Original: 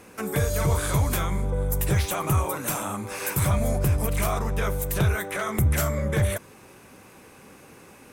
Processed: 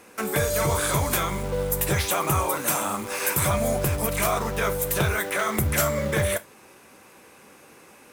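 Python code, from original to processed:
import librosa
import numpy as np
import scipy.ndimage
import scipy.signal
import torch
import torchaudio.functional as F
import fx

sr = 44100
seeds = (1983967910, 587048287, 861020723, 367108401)

p1 = fx.low_shelf(x, sr, hz=190.0, db=-12.0)
p2 = fx.quant_dither(p1, sr, seeds[0], bits=6, dither='none')
p3 = p1 + (p2 * 10.0 ** (-4.0 / 20.0))
y = fx.rev_gated(p3, sr, seeds[1], gate_ms=90, shape='falling', drr_db=12.0)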